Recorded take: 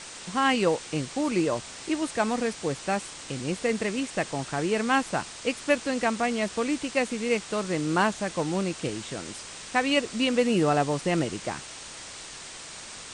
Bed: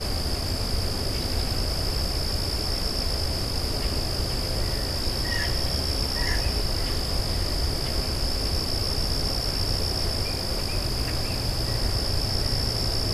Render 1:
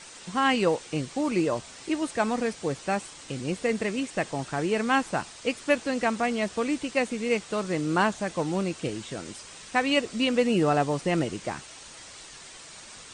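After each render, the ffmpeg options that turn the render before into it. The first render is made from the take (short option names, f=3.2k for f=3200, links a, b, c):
-af "afftdn=nr=6:nf=-42"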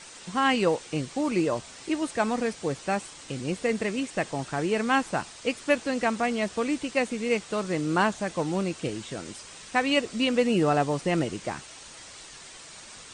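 -af anull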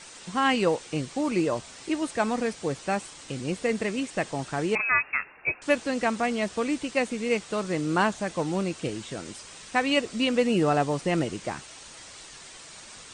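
-filter_complex "[0:a]asettb=1/sr,asplit=3[a][b][c];[a]atrim=end=4.754[d];[b]atrim=start=4.75:end=5.62,asetpts=PTS-STARTPTS,afade=t=in:d=0.004:c=qsin,afade=t=out:st=0.866:d=0.004:c=qsin,lowpass=f=2.4k:t=q:w=0.5098,lowpass=f=2.4k:t=q:w=0.6013,lowpass=f=2.4k:t=q:w=0.9,lowpass=f=2.4k:t=q:w=2.563,afreqshift=-2800[e];[c]atrim=start=5.616[f];[d][e]acrossfade=d=0.004:c1=hsin:c2=qsin[g];[g][f]acrossfade=d=0.004:c1=qsin:c2=hsin"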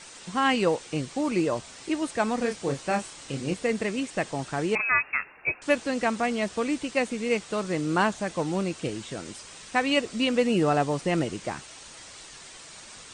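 -filter_complex "[0:a]asettb=1/sr,asplit=3[a][b][c];[a]atrim=end=2.384[d];[b]atrim=start=2.38:end=3.54,asetpts=PTS-STARTPTS,afade=t=in:d=0.004:c=qsin,afade=t=out:st=1.156:d=0.004:c=qsin,asplit=2[e][f];[f]adelay=29,volume=-6dB[g];[e][g]amix=inputs=2:normalize=0,atrim=end_sample=51156[h];[c]atrim=start=3.536[i];[d][h]acrossfade=d=0.004:c1=hsin:c2=qsin[j];[j][i]acrossfade=d=0.004:c1=qsin:c2=hsin"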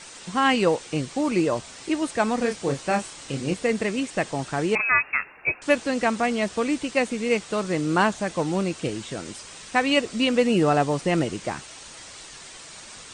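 -af "volume=3dB"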